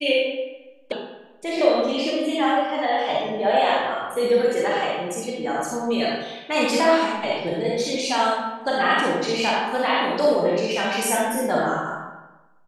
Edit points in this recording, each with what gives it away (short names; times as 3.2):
0.92 sound cut off